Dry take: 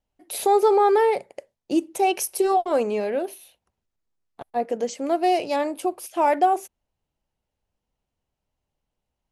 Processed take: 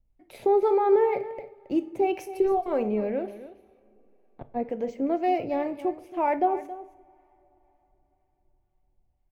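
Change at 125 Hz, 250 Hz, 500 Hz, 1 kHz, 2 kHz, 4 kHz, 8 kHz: no reading, -1.0 dB, -2.5 dB, -6.0 dB, -7.5 dB, under -10 dB, under -20 dB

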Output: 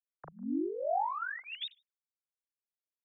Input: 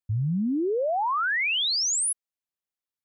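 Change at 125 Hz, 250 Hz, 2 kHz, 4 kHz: under -25 dB, -9.5 dB, -15.0 dB, -18.0 dB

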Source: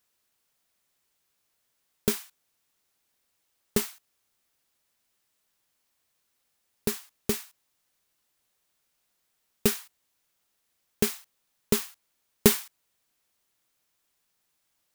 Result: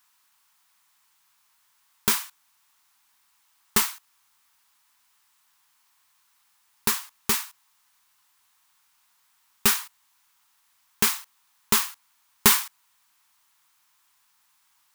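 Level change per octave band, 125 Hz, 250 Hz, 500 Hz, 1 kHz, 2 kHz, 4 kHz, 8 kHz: -3.5 dB, -4.0 dB, -7.0 dB, +11.5 dB, +9.0 dB, +7.5 dB, +7.5 dB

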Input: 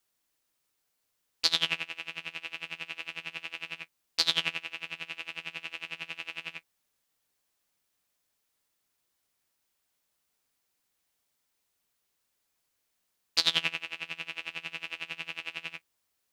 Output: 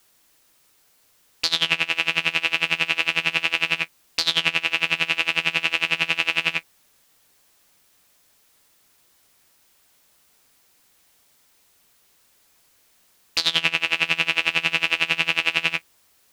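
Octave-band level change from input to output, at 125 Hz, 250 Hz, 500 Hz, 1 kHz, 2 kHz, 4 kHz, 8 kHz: +13.5 dB, +13.0 dB, +13.0 dB, +13.5 dB, +15.0 dB, +9.0 dB, +7.5 dB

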